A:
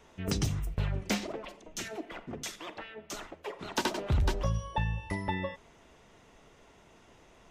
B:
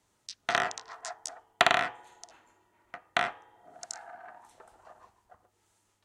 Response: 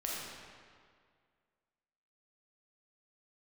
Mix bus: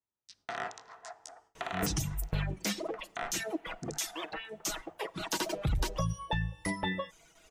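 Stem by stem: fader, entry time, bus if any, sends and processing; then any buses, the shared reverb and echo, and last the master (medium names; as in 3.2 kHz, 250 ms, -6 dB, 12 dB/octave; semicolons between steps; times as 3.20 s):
+2.5 dB, 1.55 s, no send, reverb removal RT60 1.3 s; treble shelf 5.4 kHz +10.5 dB; comb 6.2 ms, depth 54%
-4.5 dB, 0.00 s, send -23 dB, treble shelf 2 kHz -6.5 dB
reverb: on, RT60 2.0 s, pre-delay 4 ms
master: gate with hold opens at -51 dBFS; peak limiter -22 dBFS, peak gain reduction 11.5 dB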